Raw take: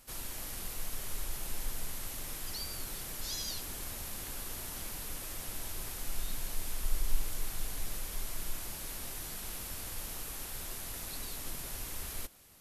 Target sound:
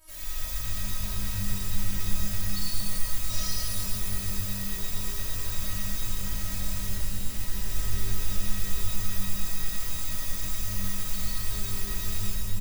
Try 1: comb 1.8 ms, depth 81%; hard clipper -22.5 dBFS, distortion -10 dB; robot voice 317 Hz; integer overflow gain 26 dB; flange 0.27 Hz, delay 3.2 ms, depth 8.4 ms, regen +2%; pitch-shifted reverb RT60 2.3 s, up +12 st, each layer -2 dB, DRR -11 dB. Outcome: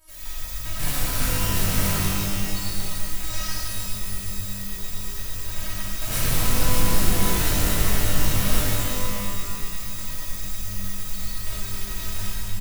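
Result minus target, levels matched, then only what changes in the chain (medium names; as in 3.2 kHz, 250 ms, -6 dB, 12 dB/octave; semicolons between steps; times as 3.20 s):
hard clipper: distortion -5 dB
change: hard clipper -29.5 dBFS, distortion -5 dB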